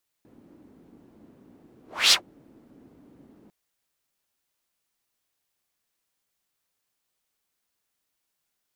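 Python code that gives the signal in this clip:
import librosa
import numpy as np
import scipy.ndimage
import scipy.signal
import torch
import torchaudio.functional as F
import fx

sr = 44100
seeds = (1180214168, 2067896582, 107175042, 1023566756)

y = fx.whoosh(sr, seeds[0], length_s=3.25, peak_s=1.87, rise_s=0.29, fall_s=0.11, ends_hz=270.0, peak_hz=4500.0, q=2.5, swell_db=38.5)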